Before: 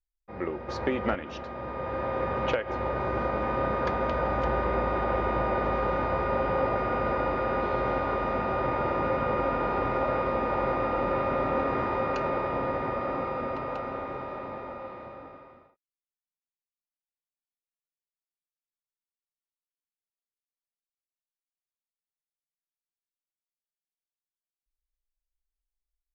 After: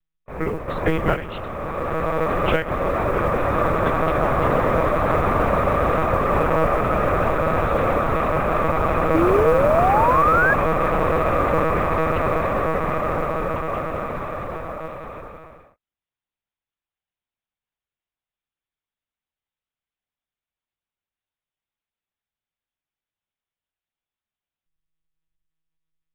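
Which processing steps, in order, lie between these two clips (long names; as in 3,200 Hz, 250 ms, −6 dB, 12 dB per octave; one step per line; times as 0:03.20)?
one-pitch LPC vocoder at 8 kHz 160 Hz
sound drawn into the spectrogram rise, 0:09.14–0:10.54, 310–1,700 Hz −26 dBFS
noise that follows the level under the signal 33 dB
level +8 dB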